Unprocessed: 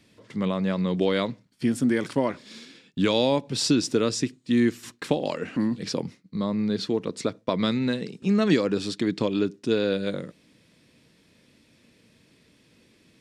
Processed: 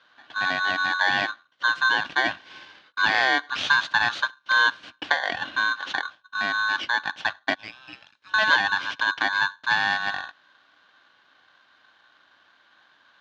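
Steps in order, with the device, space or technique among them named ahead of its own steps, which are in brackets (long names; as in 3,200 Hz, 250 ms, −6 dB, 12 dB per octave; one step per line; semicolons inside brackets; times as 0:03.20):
0:07.54–0:08.34: first difference
ring modulator pedal into a guitar cabinet (ring modulator with a square carrier 1,300 Hz; loudspeaker in its box 94–4,200 Hz, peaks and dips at 290 Hz +6 dB, 420 Hz −5 dB, 590 Hz +4 dB, 1,000 Hz −4 dB, 1,600 Hz +4 dB, 3,000 Hz +5 dB)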